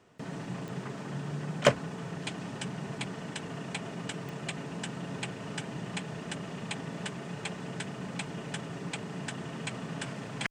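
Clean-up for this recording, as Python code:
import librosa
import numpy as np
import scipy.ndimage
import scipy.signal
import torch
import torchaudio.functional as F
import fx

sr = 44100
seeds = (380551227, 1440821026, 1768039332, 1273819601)

y = fx.fix_declip(x, sr, threshold_db=-10.0)
y = fx.fix_declick_ar(y, sr, threshold=10.0)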